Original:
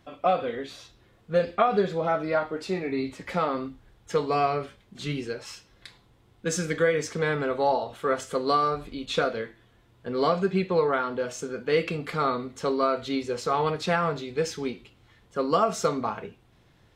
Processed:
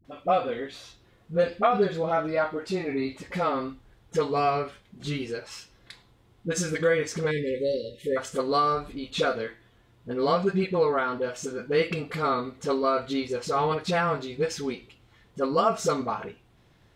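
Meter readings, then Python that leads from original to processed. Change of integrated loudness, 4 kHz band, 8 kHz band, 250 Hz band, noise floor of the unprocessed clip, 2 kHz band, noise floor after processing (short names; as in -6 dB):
0.0 dB, 0.0 dB, 0.0 dB, 0.0 dB, -61 dBFS, -0.5 dB, -61 dBFS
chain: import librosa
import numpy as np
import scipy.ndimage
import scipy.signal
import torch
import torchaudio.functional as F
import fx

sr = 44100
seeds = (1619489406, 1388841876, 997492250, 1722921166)

y = fx.dispersion(x, sr, late='highs', ms=49.0, hz=440.0)
y = fx.spec_erase(y, sr, start_s=7.31, length_s=0.86, low_hz=600.0, high_hz=1700.0)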